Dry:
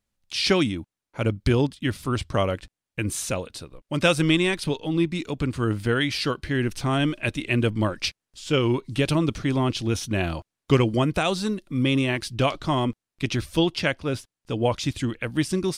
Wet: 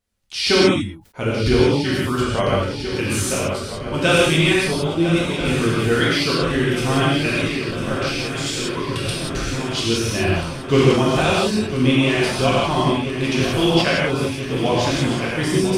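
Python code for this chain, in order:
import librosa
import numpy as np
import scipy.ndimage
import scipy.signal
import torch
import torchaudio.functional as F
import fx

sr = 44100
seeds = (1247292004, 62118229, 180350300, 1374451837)

y = fx.dereverb_blind(x, sr, rt60_s=0.57)
y = fx.over_compress(y, sr, threshold_db=-32.0, ratio=-1.0, at=(7.44, 9.81))
y = fx.echo_swing(y, sr, ms=1336, ratio=3, feedback_pct=67, wet_db=-11.0)
y = fx.rev_gated(y, sr, seeds[0], gate_ms=210, shape='flat', drr_db=-7.0)
y = fx.sustainer(y, sr, db_per_s=130.0)
y = y * 10.0 ** (-1.0 / 20.0)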